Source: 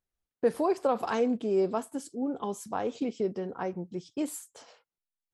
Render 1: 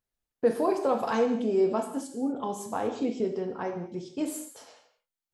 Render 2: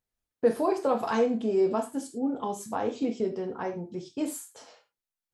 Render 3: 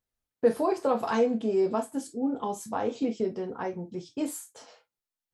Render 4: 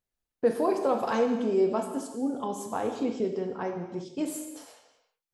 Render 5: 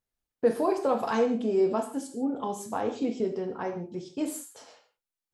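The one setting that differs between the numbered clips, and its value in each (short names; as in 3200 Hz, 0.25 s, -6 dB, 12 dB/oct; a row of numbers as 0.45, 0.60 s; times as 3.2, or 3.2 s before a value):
non-linear reverb, gate: 270, 130, 80, 410, 190 ms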